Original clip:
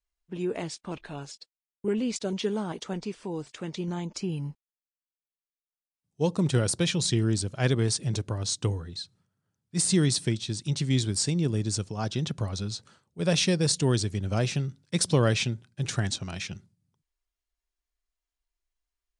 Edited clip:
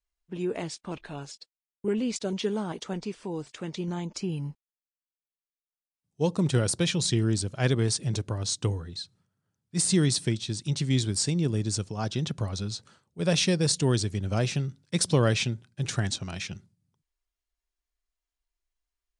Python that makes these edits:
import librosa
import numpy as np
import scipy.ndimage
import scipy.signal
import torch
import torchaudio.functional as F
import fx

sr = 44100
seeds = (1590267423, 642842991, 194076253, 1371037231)

y = x